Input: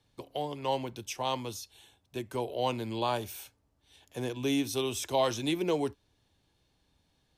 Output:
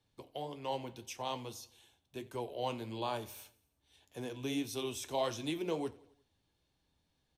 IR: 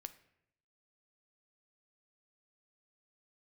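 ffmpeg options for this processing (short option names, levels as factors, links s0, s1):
-af "bandreject=f=47.47:t=h:w=4,bandreject=f=94.94:t=h:w=4,flanger=delay=9.7:depth=4.8:regen=-65:speed=1.7:shape=triangular,aecho=1:1:88|176|264|352:0.0841|0.0463|0.0255|0.014,volume=0.75"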